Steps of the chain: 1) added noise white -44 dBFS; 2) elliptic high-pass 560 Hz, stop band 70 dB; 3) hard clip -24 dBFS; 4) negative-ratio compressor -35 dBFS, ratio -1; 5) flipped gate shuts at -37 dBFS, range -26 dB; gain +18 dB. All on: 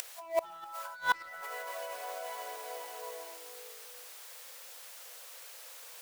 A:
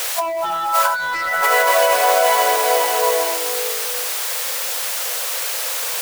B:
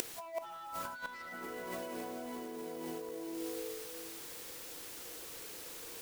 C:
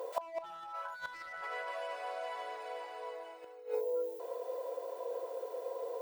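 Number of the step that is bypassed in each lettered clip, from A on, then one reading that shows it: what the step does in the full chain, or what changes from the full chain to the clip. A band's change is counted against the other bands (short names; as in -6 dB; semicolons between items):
5, momentary loudness spread change -6 LU; 2, 250 Hz band +20.5 dB; 1, 500 Hz band +8.5 dB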